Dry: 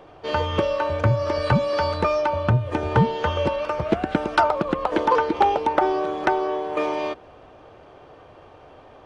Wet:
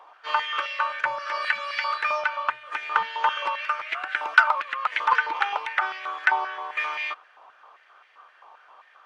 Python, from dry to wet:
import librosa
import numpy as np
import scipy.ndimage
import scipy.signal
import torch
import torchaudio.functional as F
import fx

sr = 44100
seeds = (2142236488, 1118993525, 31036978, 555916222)

y = fx.dynamic_eq(x, sr, hz=2500.0, q=1.2, threshold_db=-42.0, ratio=4.0, max_db=7)
y = fx.filter_held_highpass(y, sr, hz=7.6, low_hz=970.0, high_hz=2000.0)
y = F.gain(torch.from_numpy(y), -5.5).numpy()